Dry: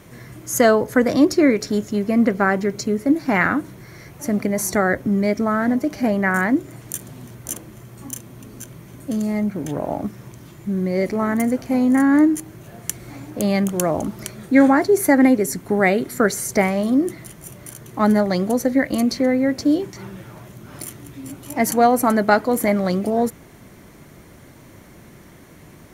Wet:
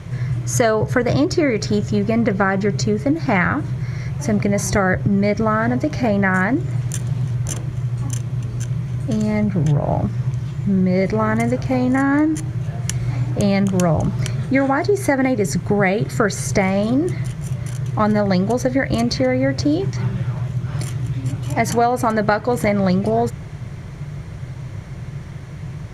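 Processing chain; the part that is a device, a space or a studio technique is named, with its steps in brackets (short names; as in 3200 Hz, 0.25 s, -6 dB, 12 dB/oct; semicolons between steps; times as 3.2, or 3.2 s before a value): jukebox (LPF 6100 Hz 12 dB/oct; resonant low shelf 180 Hz +8.5 dB, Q 3; compressor, threshold -19 dBFS, peak gain reduction 9.5 dB); gain +6 dB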